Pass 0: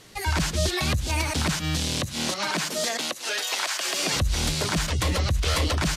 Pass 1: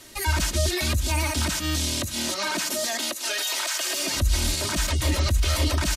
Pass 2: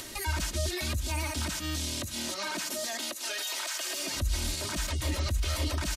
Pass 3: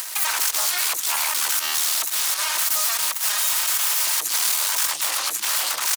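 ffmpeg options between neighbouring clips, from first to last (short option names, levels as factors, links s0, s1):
-filter_complex "[0:a]highshelf=f=8900:g=10.5,aecho=1:1:3.2:0.72,acrossover=split=170[s0][s1];[s1]alimiter=limit=0.126:level=0:latency=1:release=16[s2];[s0][s2]amix=inputs=2:normalize=0"
-af "acompressor=mode=upward:threshold=0.0631:ratio=2.5,volume=0.422"
-af "aeval=exprs='0.112*(cos(1*acos(clip(val(0)/0.112,-1,1)))-cos(1*PI/2))+0.0562*(cos(8*acos(clip(val(0)/0.112,-1,1)))-cos(8*PI/2))':c=same,highpass=f=1000:t=q:w=1.6,crystalizer=i=1.5:c=0"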